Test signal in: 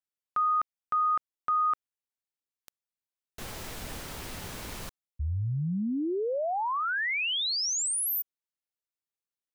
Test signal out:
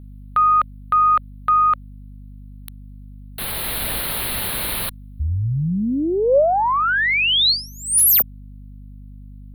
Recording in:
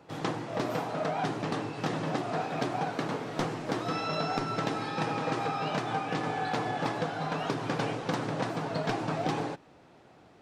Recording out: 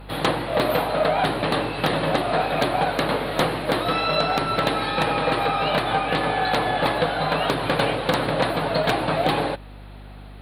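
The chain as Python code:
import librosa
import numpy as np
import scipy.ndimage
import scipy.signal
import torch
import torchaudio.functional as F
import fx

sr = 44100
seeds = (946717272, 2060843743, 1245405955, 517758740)

p1 = fx.cheby_harmonics(x, sr, harmonics=(4,), levels_db=(-39,), full_scale_db=-16.0)
p2 = fx.curve_eq(p1, sr, hz=(360.0, 2800.0, 4200.0, 6200.0, 9900.0), db=(0, 7, 10, -27, 14))
p3 = fx.rider(p2, sr, range_db=5, speed_s=0.5)
p4 = p2 + F.gain(torch.from_numpy(p3), 0.0).numpy()
p5 = 10.0 ** (-10.5 / 20.0) * (np.abs((p4 / 10.0 ** (-10.5 / 20.0) + 3.0) % 4.0 - 2.0) - 1.0)
p6 = fx.dynamic_eq(p5, sr, hz=560.0, q=3.8, threshold_db=-41.0, ratio=4.0, max_db=7)
y = fx.add_hum(p6, sr, base_hz=50, snr_db=18)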